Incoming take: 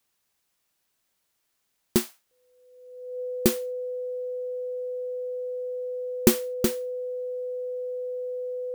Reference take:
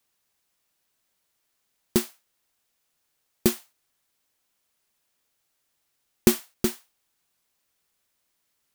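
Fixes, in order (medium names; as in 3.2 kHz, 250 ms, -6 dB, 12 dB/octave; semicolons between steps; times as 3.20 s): band-stop 500 Hz, Q 30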